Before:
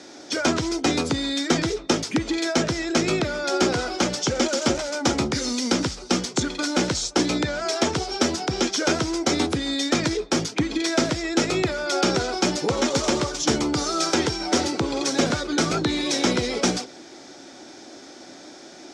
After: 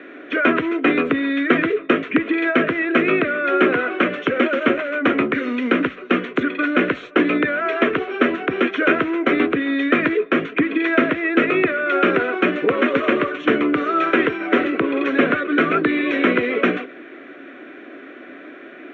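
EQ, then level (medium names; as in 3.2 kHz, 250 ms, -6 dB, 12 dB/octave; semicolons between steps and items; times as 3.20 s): cabinet simulation 250–2900 Hz, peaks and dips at 270 Hz +5 dB, 430 Hz +5 dB, 650 Hz +3 dB, 980 Hz +5 dB, 1.8 kHz +3 dB, 2.6 kHz +4 dB; peaking EQ 1.1 kHz +8 dB 1.4 oct; static phaser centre 2.1 kHz, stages 4; +4.5 dB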